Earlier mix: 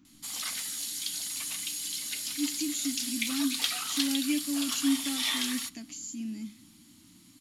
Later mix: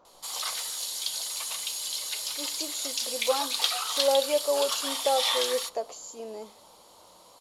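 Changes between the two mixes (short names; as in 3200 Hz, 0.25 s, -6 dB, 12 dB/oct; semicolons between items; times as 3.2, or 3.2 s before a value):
speech: remove EQ curve 180 Hz 0 dB, 300 Hz +8 dB, 460 Hz -24 dB, 2400 Hz +4 dB; master: add graphic EQ 125/250/500/1000/2000/4000 Hz -10/-11/+12/+9/-4/+5 dB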